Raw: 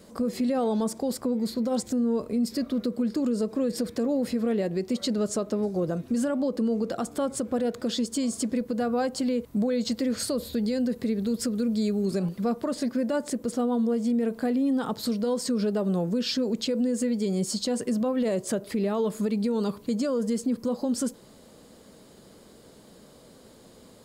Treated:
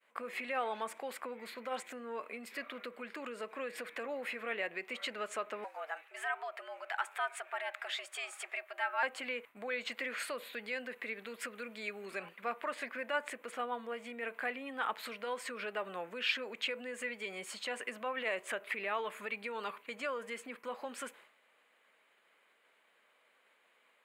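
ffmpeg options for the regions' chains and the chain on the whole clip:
-filter_complex "[0:a]asettb=1/sr,asplit=3[s0][s1][s2];[s0]atrim=end=5.644[s3];[s1]atrim=start=5.64:end=9.03,asetpts=PTS-STARTPTS,afade=t=in:d=0.004:c=qsin,afade=t=out:st=3.386:d=0.004:c=qsin,highpass=710,afreqshift=140[s4];[s2]atrim=start=9.026[s5];[s3][s4]acrossfade=d=0.004:c1=hsin:c2=qsin[s6];[s6][s5]acrossfade=d=0.004:c1=qsin:c2=hsin,highpass=1200,agate=range=0.0224:threshold=0.00282:ratio=3:detection=peak,highshelf=f=3500:t=q:w=3:g=-13.5,volume=1.33"

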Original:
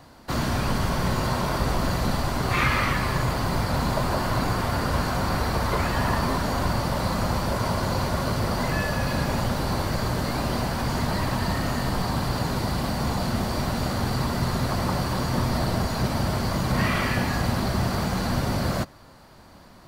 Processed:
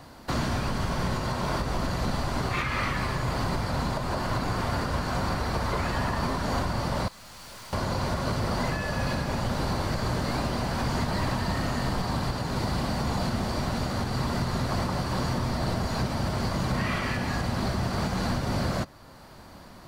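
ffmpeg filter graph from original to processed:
-filter_complex "[0:a]asettb=1/sr,asplit=3[s0][s1][s2];[s0]atrim=end=7.084[s3];[s1]atrim=start=7.08:end=7.73,asetpts=PTS-STARTPTS,afade=t=in:d=0.004:c=qsin,afade=t=out:st=0.646:d=0.004:c=qsin,tiltshelf=f=1300:g=-8.5,aeval=exprs='(tanh(178*val(0)+0.35)-tanh(0.35))/178':c=same[s4];[s2]atrim=start=7.726[s5];[s3][s4]acrossfade=d=0.004:c1=hsin:c2=qsin[s6];[s6][s5]acrossfade=d=0.004:c1=qsin:c2=hsin,acrossover=split=9600[s7][s8];[s8]acompressor=threshold=0.00178:ratio=4:attack=1:release=60[s9];[s7][s9]amix=inputs=2:normalize=0,alimiter=limit=0.1:level=0:latency=1:release=451,volume=1.26"

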